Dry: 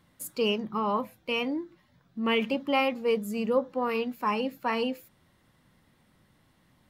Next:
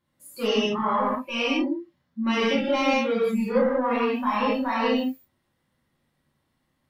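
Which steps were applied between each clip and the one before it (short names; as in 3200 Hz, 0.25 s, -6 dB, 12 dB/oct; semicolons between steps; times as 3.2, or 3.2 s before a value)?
soft clip -24 dBFS, distortion -13 dB; non-linear reverb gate 0.22 s flat, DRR -7.5 dB; spectral noise reduction 16 dB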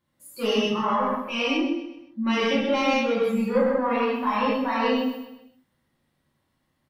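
feedback echo 0.128 s, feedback 41%, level -11 dB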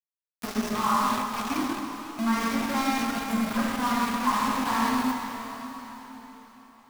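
fixed phaser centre 1200 Hz, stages 4; sample gate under -29.5 dBFS; plate-style reverb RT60 4.5 s, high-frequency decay 0.95×, DRR 3 dB; gain +1 dB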